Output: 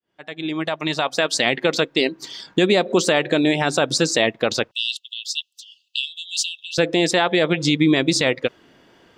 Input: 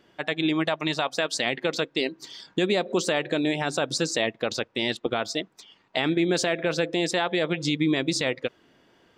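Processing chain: fade-in on the opening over 1.35 s; 4.71–6.78 s: brick-wall FIR high-pass 2.6 kHz; trim +7 dB

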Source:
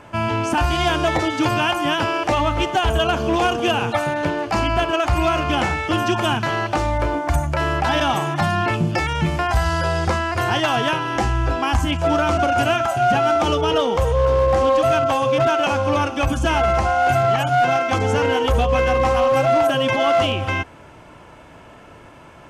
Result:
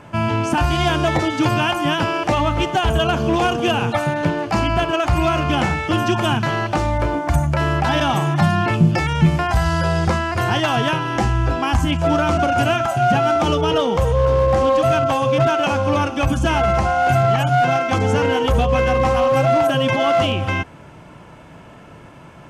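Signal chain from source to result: peaking EQ 160 Hz +8 dB 1 oct

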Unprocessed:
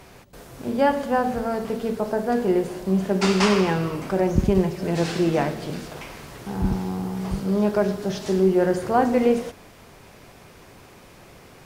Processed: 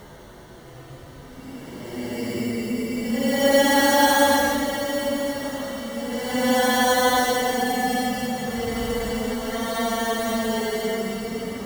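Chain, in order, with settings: sample-rate reducer 2.5 kHz, jitter 0%; Paulstretch 9.5×, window 0.10 s, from 0.44 s

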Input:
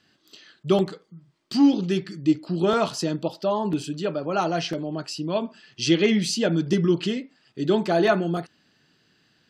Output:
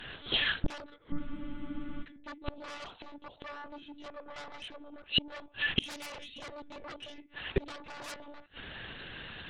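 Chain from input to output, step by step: monotone LPC vocoder at 8 kHz 290 Hz; in parallel at -4 dB: sine folder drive 19 dB, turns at -6 dBFS; on the sum: inverted gate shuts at -13 dBFS, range -32 dB; bass shelf 380 Hz -8.5 dB; spectral freeze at 1.20 s, 0.83 s; trim +3 dB

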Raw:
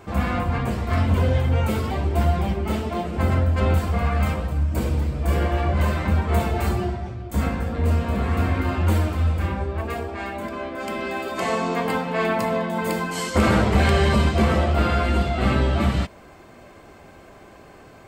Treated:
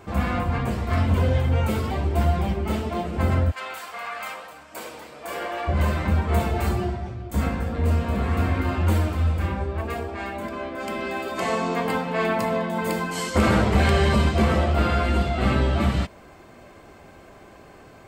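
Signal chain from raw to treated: 3.50–5.67 s: high-pass 1.2 kHz -> 490 Hz 12 dB/octave; trim -1 dB

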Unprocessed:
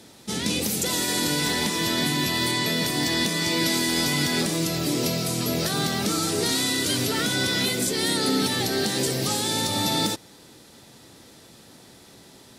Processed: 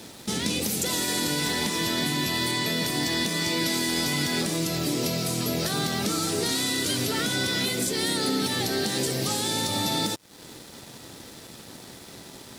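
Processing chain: compression 2:1, threshold -41 dBFS, peak gain reduction 12 dB; crossover distortion -55.5 dBFS; trim +9 dB

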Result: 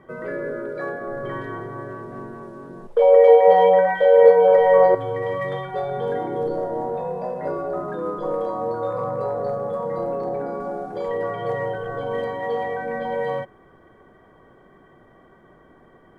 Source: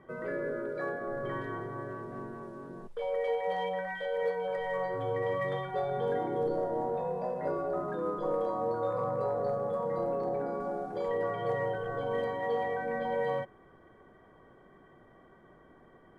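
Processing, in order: 2.88–4.95 s: peaking EQ 540 Hz +14.5 dB 2.5 oct; trim +6 dB

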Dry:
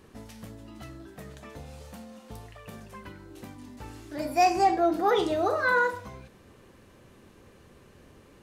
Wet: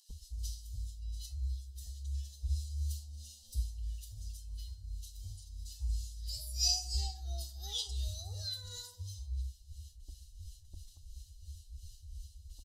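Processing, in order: inverse Chebyshev band-stop 150–2300 Hz, stop band 40 dB; gate with hold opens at -55 dBFS; low-pass 3.9 kHz 6 dB/octave; comb 1 ms, depth 40%; upward compressor, threshold -53 dBFS; time stretch by phase-locked vocoder 1.5×; harmonic tremolo 2.9 Hz, depth 70%, crossover 780 Hz; bands offset in time highs, lows 90 ms, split 1.4 kHz; trim +13.5 dB

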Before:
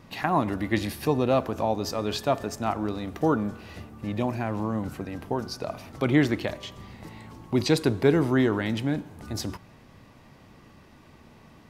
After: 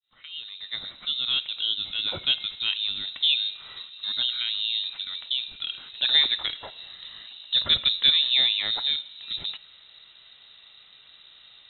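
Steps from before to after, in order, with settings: fade-in on the opening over 2.08 s; frequency inversion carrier 3.9 kHz

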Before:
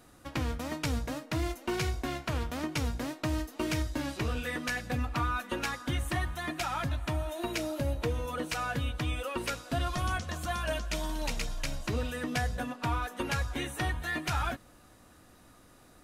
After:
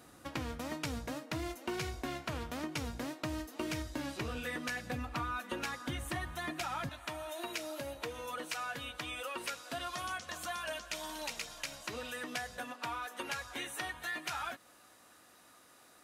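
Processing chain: high-pass 120 Hz 6 dB/octave, from 6.89 s 800 Hz; compression 2:1, threshold -40 dBFS, peak gain reduction 7 dB; trim +1 dB

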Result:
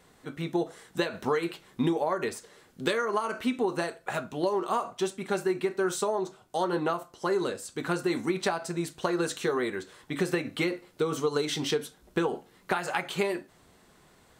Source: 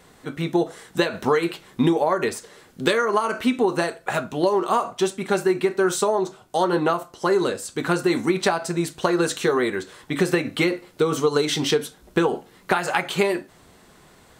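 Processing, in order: trim -7.5 dB

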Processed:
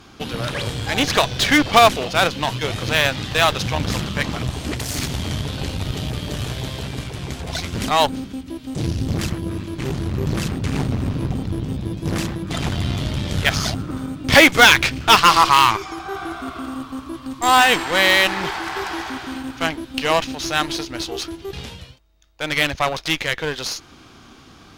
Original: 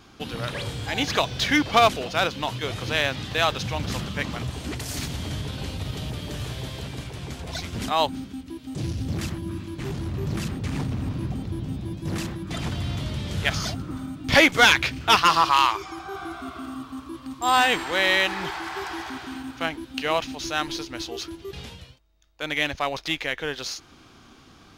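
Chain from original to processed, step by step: Chebyshev shaper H 8 -20 dB, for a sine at -8 dBFS; trim +5.5 dB

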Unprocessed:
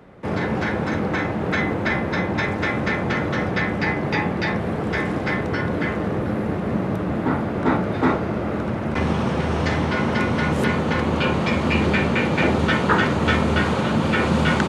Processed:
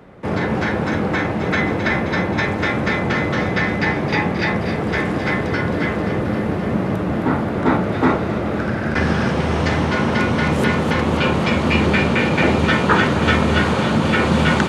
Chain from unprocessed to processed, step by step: 8.59–9.31 s: graphic EQ with 31 bands 1 kHz -4 dB, 1.6 kHz +10 dB, 5 kHz +7 dB; on a send: feedback echo behind a high-pass 265 ms, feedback 71%, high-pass 2.2 kHz, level -7.5 dB; on the sum: trim +3 dB

